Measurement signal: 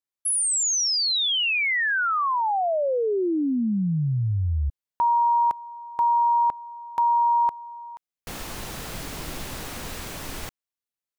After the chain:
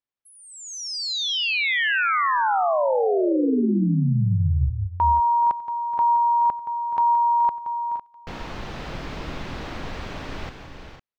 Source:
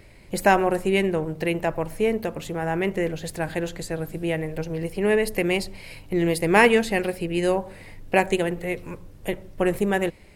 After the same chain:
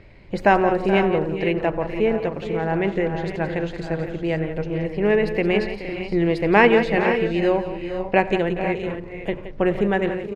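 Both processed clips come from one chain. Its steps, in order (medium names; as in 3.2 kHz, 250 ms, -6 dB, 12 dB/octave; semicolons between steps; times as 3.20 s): distance through air 210 m; on a send: multi-tap echo 92/172/425/467/505 ms -20/-11.5/-14/-11.5/-11.5 dB; on the sum: trim +2.5 dB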